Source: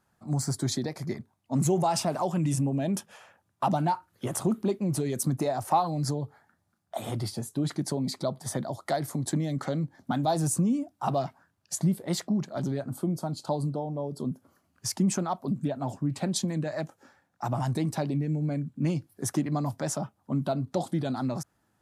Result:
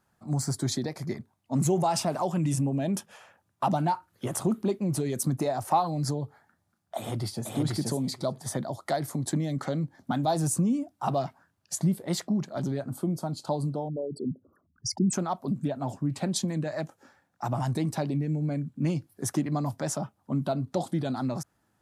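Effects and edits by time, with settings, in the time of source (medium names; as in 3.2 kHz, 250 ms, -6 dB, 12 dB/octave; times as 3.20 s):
6.97–7.54 s: echo throw 480 ms, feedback 10%, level -1 dB
13.88–15.13 s: resonances exaggerated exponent 3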